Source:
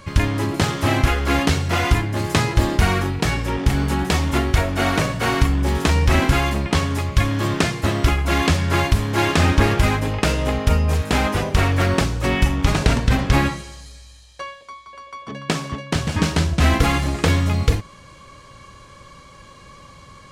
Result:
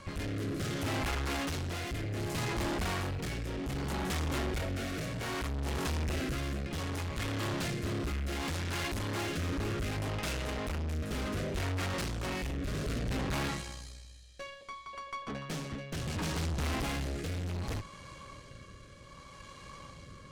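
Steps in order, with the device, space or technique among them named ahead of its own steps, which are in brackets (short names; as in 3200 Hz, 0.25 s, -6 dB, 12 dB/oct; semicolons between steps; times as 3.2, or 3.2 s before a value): overdriven rotary cabinet (tube stage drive 31 dB, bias 0.7; rotary speaker horn 0.65 Hz)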